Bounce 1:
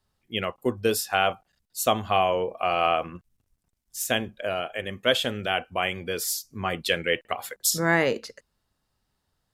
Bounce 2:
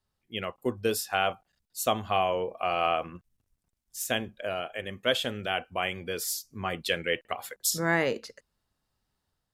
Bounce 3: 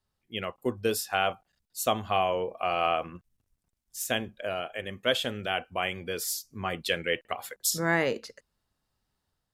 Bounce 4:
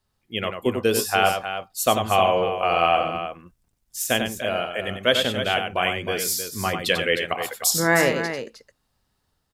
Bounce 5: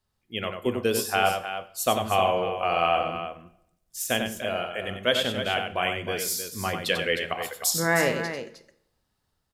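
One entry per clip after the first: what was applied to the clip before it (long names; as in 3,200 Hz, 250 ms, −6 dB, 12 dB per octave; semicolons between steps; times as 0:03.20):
automatic gain control gain up to 3 dB; level −6.5 dB
no processing that can be heard
multi-tap delay 94/310 ms −6.5/−9.5 dB; level +6.5 dB
convolution reverb RT60 0.75 s, pre-delay 12 ms, DRR 13 dB; level −4 dB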